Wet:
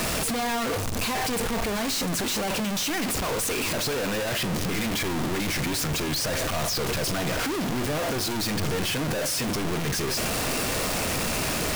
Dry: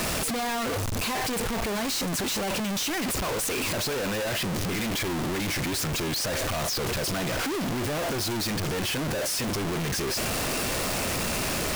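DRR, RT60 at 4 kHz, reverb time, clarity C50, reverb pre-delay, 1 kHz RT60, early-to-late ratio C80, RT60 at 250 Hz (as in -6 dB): 12.0 dB, 0.45 s, 0.85 s, 17.0 dB, 4 ms, 0.85 s, 19.5 dB, 1.3 s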